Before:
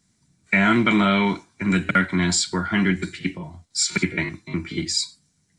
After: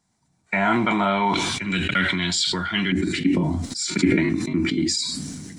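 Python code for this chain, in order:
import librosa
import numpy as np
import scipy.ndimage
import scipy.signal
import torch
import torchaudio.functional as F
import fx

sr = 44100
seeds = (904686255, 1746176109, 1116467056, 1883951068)

y = fx.peak_eq(x, sr, hz=fx.steps((0.0, 820.0), (1.34, 3200.0), (2.92, 270.0)), db=14.5, octaves=0.9)
y = fx.sustainer(y, sr, db_per_s=26.0)
y = y * librosa.db_to_amplitude(-6.5)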